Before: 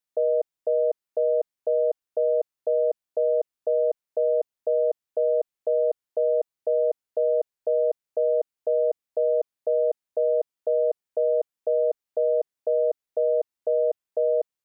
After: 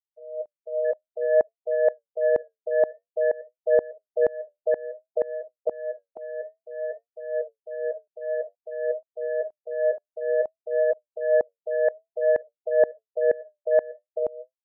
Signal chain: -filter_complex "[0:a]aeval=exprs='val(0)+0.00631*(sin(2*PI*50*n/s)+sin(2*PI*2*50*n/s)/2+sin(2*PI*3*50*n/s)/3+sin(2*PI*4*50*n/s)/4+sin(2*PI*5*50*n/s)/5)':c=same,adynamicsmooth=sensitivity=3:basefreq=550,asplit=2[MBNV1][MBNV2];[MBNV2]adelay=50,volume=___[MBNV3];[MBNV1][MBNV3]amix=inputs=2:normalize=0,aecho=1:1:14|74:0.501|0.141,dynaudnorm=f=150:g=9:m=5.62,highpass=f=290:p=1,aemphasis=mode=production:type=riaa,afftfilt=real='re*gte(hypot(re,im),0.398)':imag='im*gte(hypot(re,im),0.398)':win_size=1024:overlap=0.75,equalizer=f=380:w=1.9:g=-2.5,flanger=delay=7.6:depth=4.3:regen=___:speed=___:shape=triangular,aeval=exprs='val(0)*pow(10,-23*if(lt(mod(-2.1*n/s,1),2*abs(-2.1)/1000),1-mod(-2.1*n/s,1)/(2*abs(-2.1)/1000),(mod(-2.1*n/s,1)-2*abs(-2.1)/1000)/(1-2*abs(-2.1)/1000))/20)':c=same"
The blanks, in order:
0.2, 58, 0.55